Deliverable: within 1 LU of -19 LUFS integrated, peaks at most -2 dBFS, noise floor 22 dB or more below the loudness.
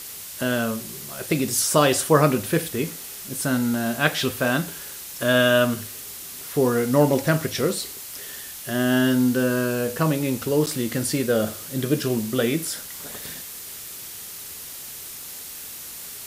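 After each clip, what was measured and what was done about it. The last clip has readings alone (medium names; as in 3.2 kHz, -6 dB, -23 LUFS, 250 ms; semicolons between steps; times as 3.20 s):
dropouts 1; longest dropout 8.5 ms; noise floor -37 dBFS; noise floor target -45 dBFS; loudness -23.0 LUFS; peak level -2.5 dBFS; loudness target -19.0 LUFS
-> interpolate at 10.66 s, 8.5 ms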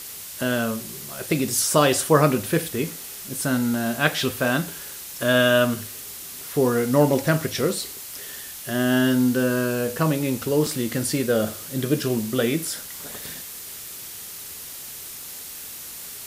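dropouts 0; noise floor -37 dBFS; noise floor target -45 dBFS
-> noise reduction 8 dB, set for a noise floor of -37 dBFS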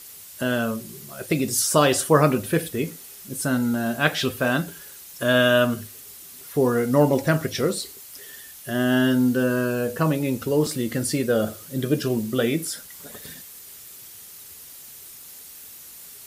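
noise floor -43 dBFS; noise floor target -45 dBFS
-> noise reduction 6 dB, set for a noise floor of -43 dBFS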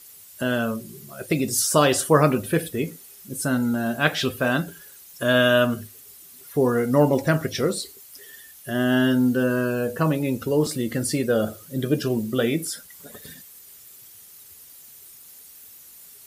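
noise floor -47 dBFS; loudness -22.5 LUFS; peak level -3.0 dBFS; loudness target -19.0 LUFS
-> trim +3.5 dB; peak limiter -2 dBFS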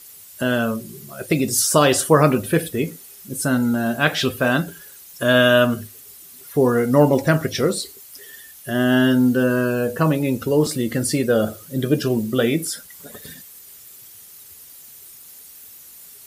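loudness -19.0 LUFS; peak level -2.0 dBFS; noise floor -43 dBFS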